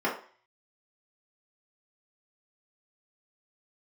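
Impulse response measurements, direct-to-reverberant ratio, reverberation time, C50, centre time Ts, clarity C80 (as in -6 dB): -6.5 dB, 0.45 s, 7.5 dB, 26 ms, 12.5 dB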